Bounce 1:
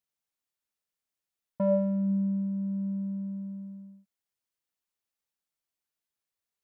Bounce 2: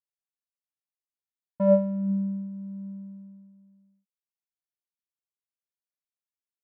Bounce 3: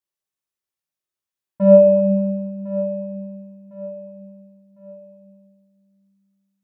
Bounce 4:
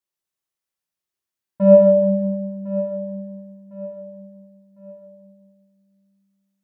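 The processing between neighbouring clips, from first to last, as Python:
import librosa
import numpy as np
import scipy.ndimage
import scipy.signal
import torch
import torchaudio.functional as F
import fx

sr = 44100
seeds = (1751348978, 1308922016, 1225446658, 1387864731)

y1 = fx.upward_expand(x, sr, threshold_db=-38.0, expansion=2.5)
y1 = y1 * librosa.db_to_amplitude(7.5)
y2 = fx.echo_feedback(y1, sr, ms=1055, feedback_pct=38, wet_db=-15)
y2 = fx.rev_fdn(y2, sr, rt60_s=1.5, lf_ratio=1.0, hf_ratio=0.8, size_ms=16.0, drr_db=-1.5)
y2 = y2 * librosa.db_to_amplitude(2.5)
y3 = y2 + 10.0 ** (-4.0 / 20.0) * np.pad(y2, (int(136 * sr / 1000.0), 0))[:len(y2)]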